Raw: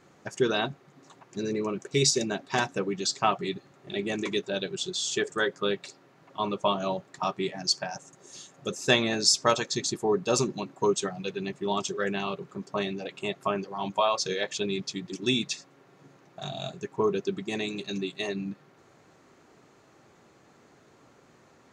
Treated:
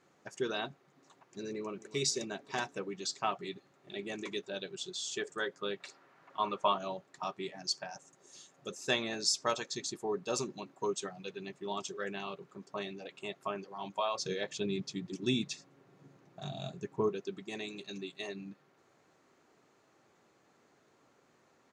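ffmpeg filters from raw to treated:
ffmpeg -i in.wav -filter_complex "[0:a]asplit=2[link_01][link_02];[link_02]afade=type=in:start_time=1.51:duration=0.01,afade=type=out:start_time=1.97:duration=0.01,aecho=0:1:270|540|810|1080|1350|1620|1890:0.141254|0.0918149|0.0596797|0.0387918|0.0252147|0.0163895|0.0106532[link_03];[link_01][link_03]amix=inputs=2:normalize=0,asettb=1/sr,asplit=3[link_04][link_05][link_06];[link_04]atrim=end=5.804[link_07];[link_05]atrim=start=5.8:end=6.78,asetpts=PTS-STARTPTS,afade=type=in:duration=0.004:curve=qsin,afade=type=out:start_time=0.976:duration=0.004:curve=qsin,equalizer=frequency=1400:width_type=o:width=2:gain=9[link_08];[link_06]atrim=start=6.776[link_09];[link_07][link_08]acrossfade=duration=0.004:curve1=hsin:curve2=qsin[link_10];[link_10][link_09]acrossfade=duration=0.004:curve1=qsin:curve2=hsin,asettb=1/sr,asplit=3[link_11][link_12][link_13];[link_11]atrim=end=14.154[link_14];[link_12]atrim=start=14.15:end=17.09,asetpts=PTS-STARTPTS,afade=type=in:duration=0.004:curve=qsin,afade=type=out:start_time=2.936:duration=0.004:curve=qsin,equalizer=frequency=110:width=0.39:gain=11.5[link_15];[link_13]atrim=start=17.086[link_16];[link_14][link_15]acrossfade=duration=0.004:curve1=hsin:curve2=qsin[link_17];[link_17][link_16]acrossfade=duration=0.004:curve1=qsin:curve2=hsin,lowshelf=frequency=160:gain=-8.5,volume=-8.5dB" out.wav

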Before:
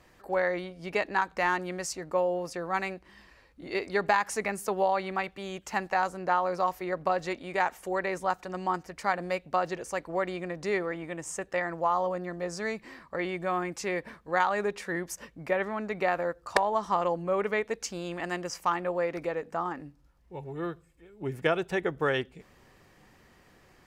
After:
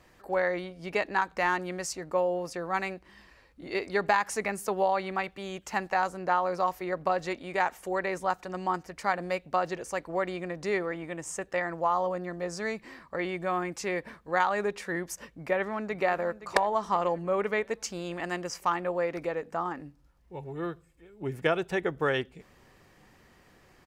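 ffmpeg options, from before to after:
ffmpeg -i in.wav -filter_complex "[0:a]asplit=2[link_01][link_02];[link_02]afade=type=in:start_time=15.19:duration=0.01,afade=type=out:start_time=16.03:duration=0.01,aecho=0:1:520|1040|1560|2080|2600|3120:0.199526|0.109739|0.0603567|0.0331962|0.0182579|0.0100418[link_03];[link_01][link_03]amix=inputs=2:normalize=0" out.wav

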